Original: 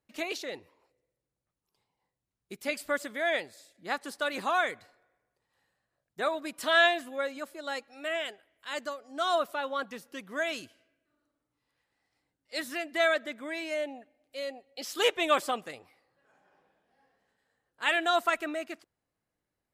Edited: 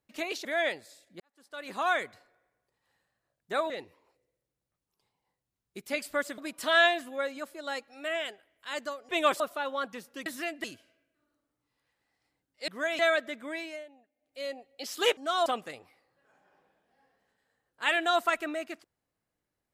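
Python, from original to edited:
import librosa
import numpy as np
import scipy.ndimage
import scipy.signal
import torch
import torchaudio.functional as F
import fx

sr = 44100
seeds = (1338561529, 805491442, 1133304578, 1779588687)

y = fx.edit(x, sr, fx.move(start_s=0.45, length_s=2.68, to_s=6.38),
    fx.fade_in_span(start_s=3.88, length_s=0.69, curve='qua'),
    fx.swap(start_s=9.09, length_s=0.29, other_s=15.15, other_length_s=0.31),
    fx.swap(start_s=10.24, length_s=0.31, other_s=12.59, other_length_s=0.38),
    fx.fade_down_up(start_s=13.52, length_s=0.91, db=-16.0, fade_s=0.31), tone=tone)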